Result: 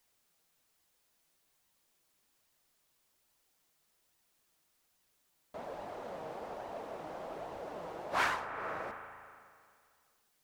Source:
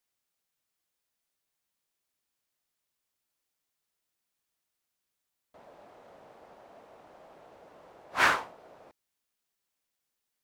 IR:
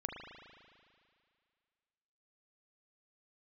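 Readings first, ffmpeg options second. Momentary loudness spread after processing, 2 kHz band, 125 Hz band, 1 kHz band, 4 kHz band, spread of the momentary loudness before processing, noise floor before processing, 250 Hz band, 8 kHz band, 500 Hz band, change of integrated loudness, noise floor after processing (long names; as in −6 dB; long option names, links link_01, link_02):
18 LU, −7.5 dB, +1.0 dB, −3.0 dB, −7.5 dB, 11 LU, −85 dBFS, +0.5 dB, −7.0 dB, +3.0 dB, −12.5 dB, −76 dBFS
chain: -filter_complex "[0:a]asplit=2[link_01][link_02];[link_02]lowpass=1500[link_03];[1:a]atrim=start_sample=2205[link_04];[link_03][link_04]afir=irnorm=-1:irlink=0,volume=-9.5dB[link_05];[link_01][link_05]amix=inputs=2:normalize=0,acompressor=threshold=-41dB:ratio=4,flanger=delay=1:depth=5.4:regen=63:speed=1.2:shape=sinusoidal,volume=13dB"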